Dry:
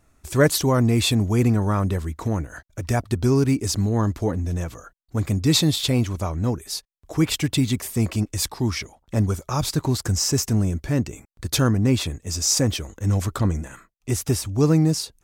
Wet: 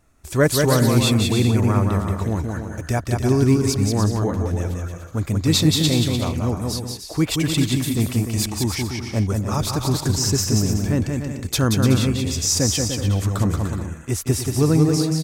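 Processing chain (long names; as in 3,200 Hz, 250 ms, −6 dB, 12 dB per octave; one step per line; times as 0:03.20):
bouncing-ball delay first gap 180 ms, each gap 0.65×, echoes 5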